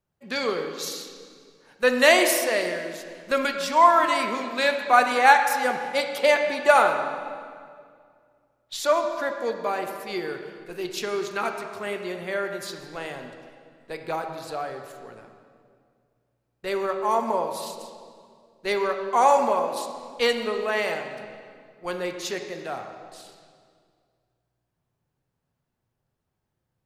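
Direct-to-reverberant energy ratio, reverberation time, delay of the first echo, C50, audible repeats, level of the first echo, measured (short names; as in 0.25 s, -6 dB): 4.5 dB, 2.1 s, none, 6.0 dB, none, none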